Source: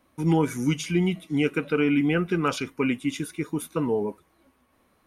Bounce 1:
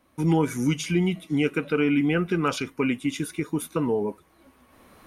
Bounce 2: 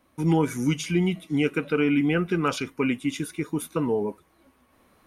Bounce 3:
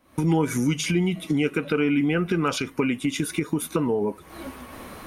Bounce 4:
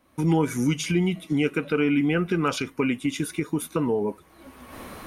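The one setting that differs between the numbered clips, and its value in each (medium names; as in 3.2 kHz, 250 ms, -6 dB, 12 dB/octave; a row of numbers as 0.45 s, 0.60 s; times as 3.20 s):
recorder AGC, rising by: 13 dB/s, 5 dB/s, 78 dB/s, 32 dB/s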